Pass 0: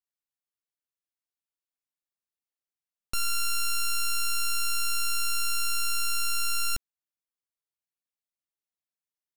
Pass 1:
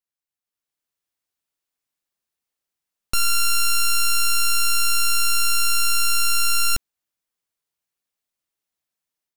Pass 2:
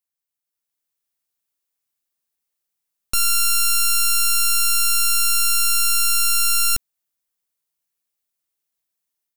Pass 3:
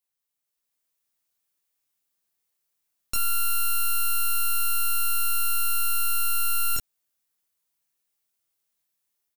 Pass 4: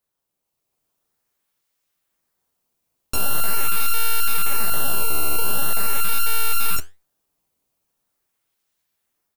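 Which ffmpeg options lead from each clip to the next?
-af "dynaudnorm=f=420:g=3:m=8.5dB"
-af "crystalizer=i=1:c=0,volume=-2dB"
-af "aecho=1:1:24|34:0.668|0.376,alimiter=limit=-15.5dB:level=0:latency=1:release=75"
-filter_complex "[0:a]asplit=2[a][b];[b]acrusher=samples=14:mix=1:aa=0.000001:lfo=1:lforange=22.4:lforate=0.43,volume=-8dB[c];[a][c]amix=inputs=2:normalize=0,flanger=delay=4.5:depth=8.9:regen=78:speed=1.4:shape=triangular,volume=6.5dB"

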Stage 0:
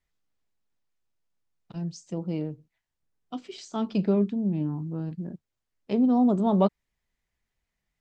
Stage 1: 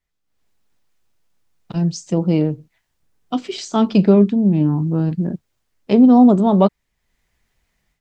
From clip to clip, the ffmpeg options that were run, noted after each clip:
-af "dynaudnorm=f=240:g=3:m=14dB"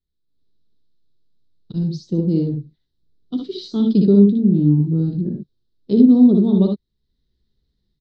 -filter_complex "[0:a]firequalizer=gain_entry='entry(400,0);entry(660,-20);entry(1500,-18);entry(2400,-25);entry(3900,2);entry(7000,-25)':delay=0.05:min_phase=1,asplit=2[a][b];[b]aecho=0:1:60|74:0.562|0.447[c];[a][c]amix=inputs=2:normalize=0,volume=-1.5dB"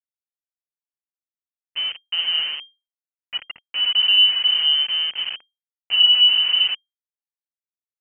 -af "agate=range=-33dB:threshold=-38dB:ratio=3:detection=peak,aeval=exprs='val(0)*gte(abs(val(0)),0.0794)':c=same,lowpass=f=2.7k:t=q:w=0.5098,lowpass=f=2.7k:t=q:w=0.6013,lowpass=f=2.7k:t=q:w=0.9,lowpass=f=2.7k:t=q:w=2.563,afreqshift=-3200,volume=-4dB"

